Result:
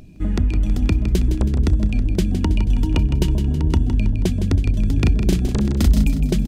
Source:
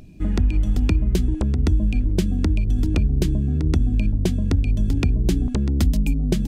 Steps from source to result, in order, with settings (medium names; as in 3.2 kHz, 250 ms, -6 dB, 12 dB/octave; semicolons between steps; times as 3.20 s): 2.33–3.88 s: small resonant body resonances 930/2900 Hz, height 15 dB; 4.94–6.06 s: doubling 38 ms -2 dB; feedback delay 161 ms, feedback 50%, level -9 dB; trim +1 dB